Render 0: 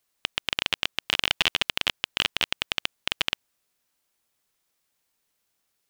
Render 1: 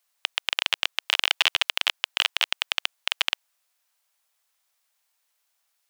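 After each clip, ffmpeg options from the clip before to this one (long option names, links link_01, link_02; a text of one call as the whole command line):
ffmpeg -i in.wav -af "highpass=frequency=620:width=0.5412,highpass=frequency=620:width=1.3066,volume=2dB" out.wav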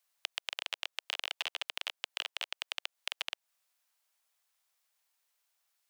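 ffmpeg -i in.wav -filter_complex "[0:a]acrossover=split=650|1500|3100[link_01][link_02][link_03][link_04];[link_01]acompressor=threshold=-44dB:ratio=4[link_05];[link_02]acompressor=threshold=-44dB:ratio=4[link_06];[link_03]acompressor=threshold=-34dB:ratio=4[link_07];[link_04]acompressor=threshold=-35dB:ratio=4[link_08];[link_05][link_06][link_07][link_08]amix=inputs=4:normalize=0,volume=-5dB" out.wav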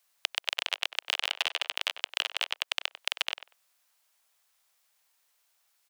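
ffmpeg -i in.wav -filter_complex "[0:a]asplit=2[link_01][link_02];[link_02]adelay=96,lowpass=frequency=1900:poles=1,volume=-10dB,asplit=2[link_03][link_04];[link_04]adelay=96,lowpass=frequency=1900:poles=1,volume=0.17[link_05];[link_01][link_03][link_05]amix=inputs=3:normalize=0,volume=7dB" out.wav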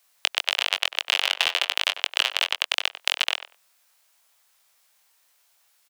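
ffmpeg -i in.wav -filter_complex "[0:a]asplit=2[link_01][link_02];[link_02]adelay=22,volume=-6dB[link_03];[link_01][link_03]amix=inputs=2:normalize=0,volume=6.5dB" out.wav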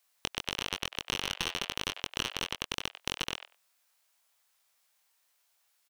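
ffmpeg -i in.wav -af "aeval=exprs='clip(val(0),-1,0.0841)':channel_layout=same,volume=-8.5dB" out.wav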